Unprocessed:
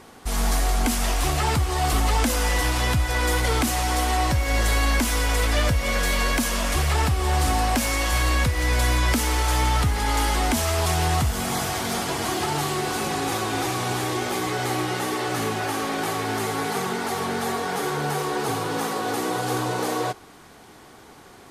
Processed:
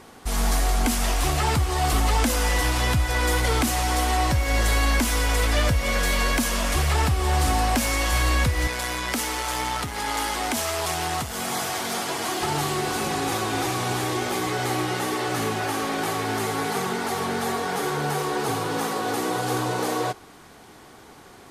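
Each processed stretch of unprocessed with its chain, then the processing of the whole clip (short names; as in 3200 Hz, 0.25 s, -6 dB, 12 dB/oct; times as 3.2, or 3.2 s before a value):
8.67–12.43 HPF 310 Hz 6 dB/oct + core saturation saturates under 580 Hz
whole clip: dry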